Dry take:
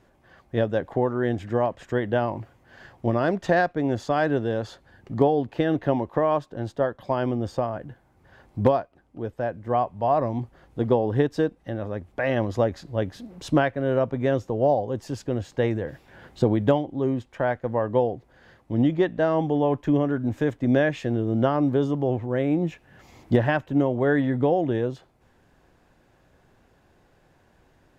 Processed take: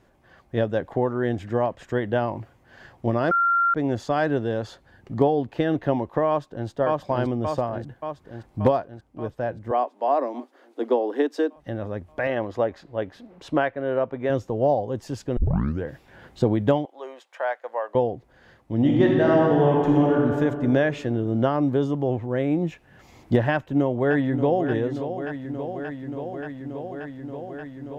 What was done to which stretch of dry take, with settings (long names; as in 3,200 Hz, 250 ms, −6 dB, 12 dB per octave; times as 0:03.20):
0:03.31–0:03.74: beep over 1,380 Hz −17 dBFS
0:06.28–0:06.68: delay throw 580 ms, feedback 65%, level −0.5 dB
0:09.71–0:11.56: Butterworth high-pass 250 Hz 72 dB per octave
0:12.27–0:14.30: bass and treble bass −10 dB, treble −11 dB
0:15.37: tape start 0.48 s
0:16.85–0:17.95: high-pass filter 570 Hz 24 dB per octave
0:18.77–0:20.20: thrown reverb, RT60 2.5 s, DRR −2.5 dB
0:23.52–0:24.67: delay throw 580 ms, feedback 85%, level −9.5 dB